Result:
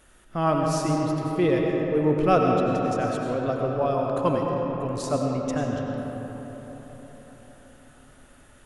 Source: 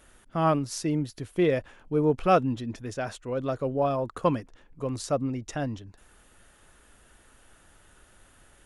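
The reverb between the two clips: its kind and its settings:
comb and all-pass reverb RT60 4.7 s, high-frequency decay 0.4×, pre-delay 55 ms, DRR −0.5 dB

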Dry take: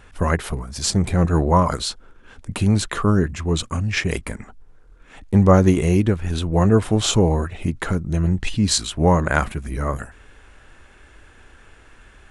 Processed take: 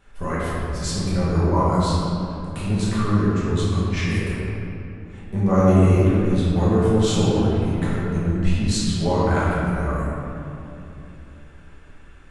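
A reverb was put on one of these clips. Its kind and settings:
rectangular room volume 120 cubic metres, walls hard, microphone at 1.2 metres
level −12.5 dB

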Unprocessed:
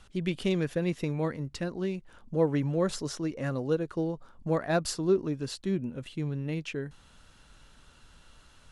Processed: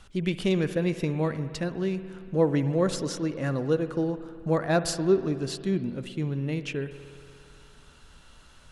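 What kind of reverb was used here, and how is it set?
spring reverb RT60 2.4 s, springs 58 ms, chirp 80 ms, DRR 11.5 dB
level +3 dB

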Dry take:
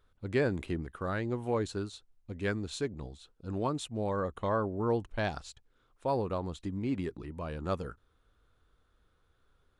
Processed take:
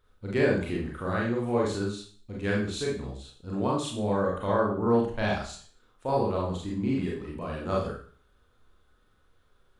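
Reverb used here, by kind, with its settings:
four-comb reverb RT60 0.45 s, combs from 30 ms, DRR −4 dB

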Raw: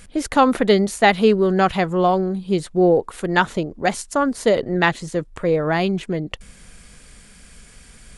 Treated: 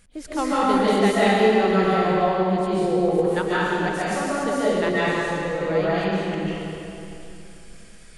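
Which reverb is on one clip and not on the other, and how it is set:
comb and all-pass reverb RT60 2.9 s, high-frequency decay 0.85×, pre-delay 105 ms, DRR −10 dB
level −12.5 dB

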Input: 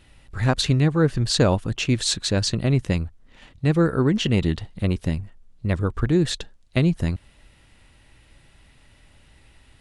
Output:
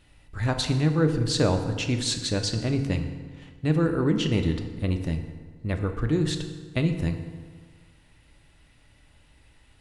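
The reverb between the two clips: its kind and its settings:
feedback delay network reverb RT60 1.6 s, low-frequency decay 1×, high-frequency decay 0.65×, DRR 5.5 dB
level −5 dB

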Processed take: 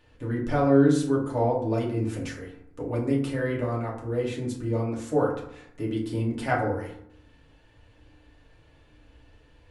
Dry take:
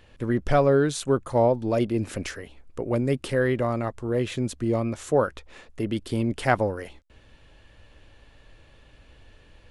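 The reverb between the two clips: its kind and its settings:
feedback delay network reverb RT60 0.7 s, low-frequency decay 1.25×, high-frequency decay 0.45×, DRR −4 dB
level −9 dB

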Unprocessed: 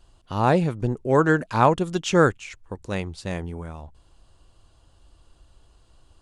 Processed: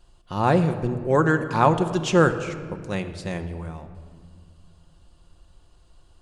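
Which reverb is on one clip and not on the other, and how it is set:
rectangular room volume 3,700 cubic metres, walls mixed, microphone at 0.91 metres
level −1 dB

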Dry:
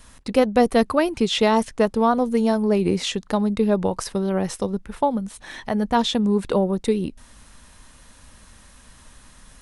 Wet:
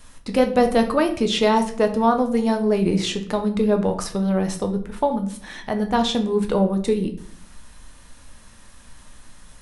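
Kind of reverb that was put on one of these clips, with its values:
rectangular room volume 70 cubic metres, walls mixed, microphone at 0.42 metres
level −1 dB

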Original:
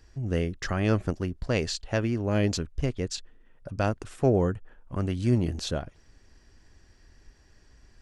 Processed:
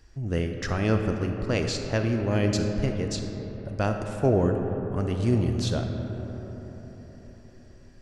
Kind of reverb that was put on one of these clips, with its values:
comb and all-pass reverb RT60 4.7 s, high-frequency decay 0.35×, pre-delay 0 ms, DRR 4 dB

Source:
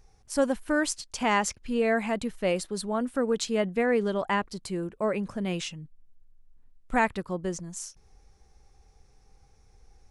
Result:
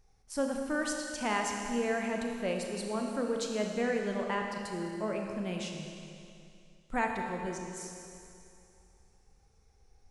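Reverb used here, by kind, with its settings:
four-comb reverb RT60 2.6 s, combs from 26 ms, DRR 1.5 dB
level −7.5 dB

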